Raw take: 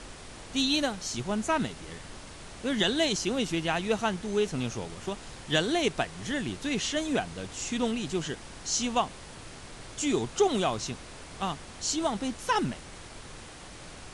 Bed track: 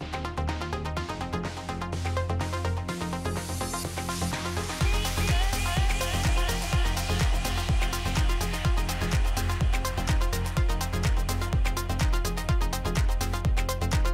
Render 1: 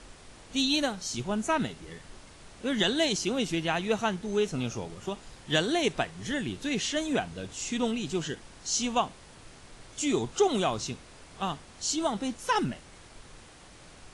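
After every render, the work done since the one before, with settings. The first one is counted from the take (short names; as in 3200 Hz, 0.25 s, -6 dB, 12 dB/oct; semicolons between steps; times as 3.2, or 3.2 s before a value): noise print and reduce 6 dB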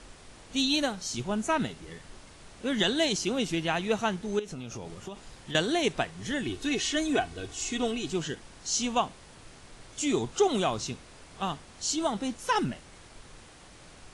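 4.39–5.55 compressor 8:1, threshold -34 dBFS; 6.43–8.1 comb 2.7 ms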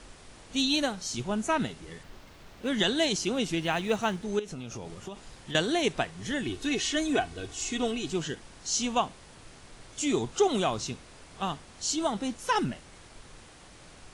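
2.03–2.68 median filter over 5 samples; 3.61–4.25 block floating point 7-bit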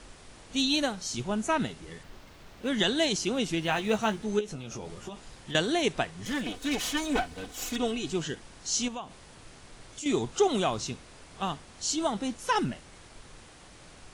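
3.67–5.17 doubler 14 ms -7 dB; 6.25–7.76 minimum comb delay 4 ms; 8.88–10.06 compressor 2.5:1, threshold -39 dBFS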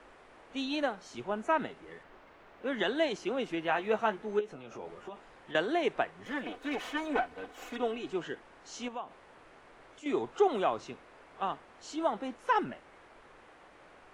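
three-band isolator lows -16 dB, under 310 Hz, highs -20 dB, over 2400 Hz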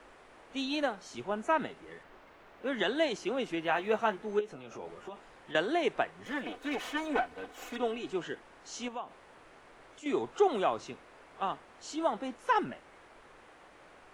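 high shelf 5700 Hz +5 dB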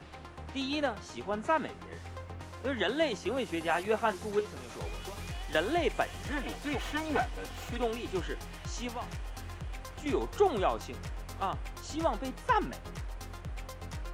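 add bed track -15.5 dB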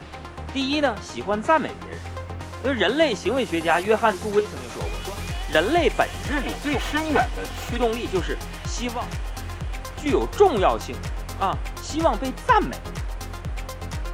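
gain +10 dB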